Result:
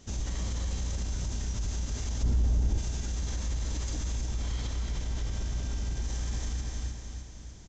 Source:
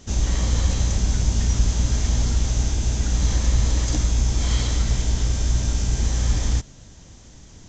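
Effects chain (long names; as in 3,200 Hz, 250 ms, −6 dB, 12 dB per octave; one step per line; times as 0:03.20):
0:04.26–0:06.02: high-shelf EQ 6,500 Hz −9.5 dB
repeating echo 305 ms, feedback 50%, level −7 dB
brickwall limiter −17.5 dBFS, peak gain reduction 10.5 dB
0:02.23–0:02.78: tilt shelving filter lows +7 dB, about 890 Hz
level −7.5 dB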